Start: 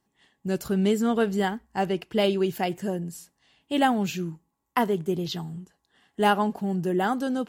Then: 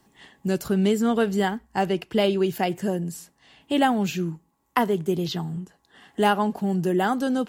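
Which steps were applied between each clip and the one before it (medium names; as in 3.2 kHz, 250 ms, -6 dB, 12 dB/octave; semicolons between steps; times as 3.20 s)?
three bands compressed up and down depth 40%; trim +2 dB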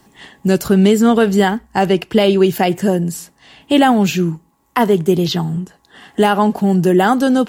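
loudness maximiser +11.5 dB; trim -1 dB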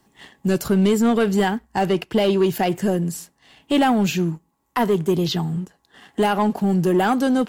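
waveshaping leveller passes 1; trim -8 dB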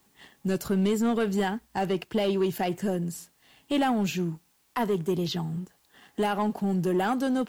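word length cut 10-bit, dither triangular; trim -7.5 dB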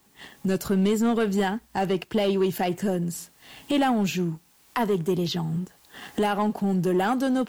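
recorder AGC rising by 19 dB/s; trim +2.5 dB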